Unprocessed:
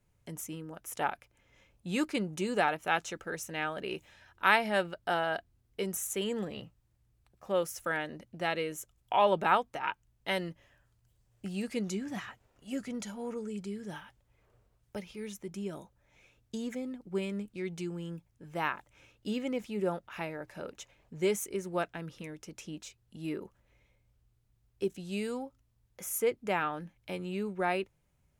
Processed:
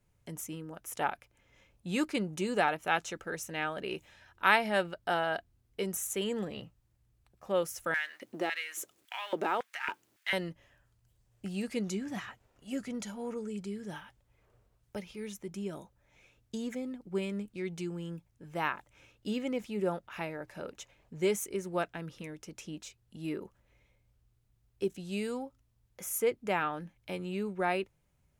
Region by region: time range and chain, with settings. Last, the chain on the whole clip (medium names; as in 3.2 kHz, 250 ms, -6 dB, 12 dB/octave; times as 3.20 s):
7.94–10.33 s: companding laws mixed up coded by mu + compression 2:1, threshold -33 dBFS + LFO high-pass square 1.8 Hz 320–1800 Hz
whole clip: none